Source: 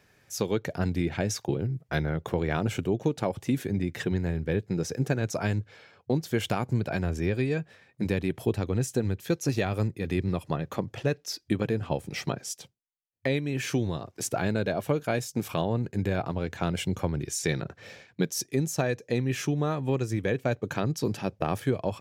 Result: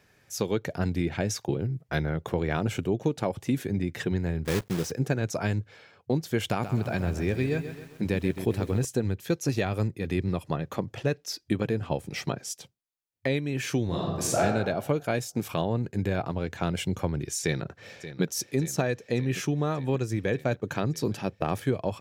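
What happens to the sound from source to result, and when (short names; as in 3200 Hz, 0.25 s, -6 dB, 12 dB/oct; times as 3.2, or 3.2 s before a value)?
4.45–4.92 block floating point 3-bit
6.48–8.85 lo-fi delay 0.133 s, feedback 55%, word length 8-bit, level -10 dB
13.86–14.4 reverb throw, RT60 1.2 s, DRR -5 dB
17.42–18.23 echo throw 0.58 s, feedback 75%, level -13 dB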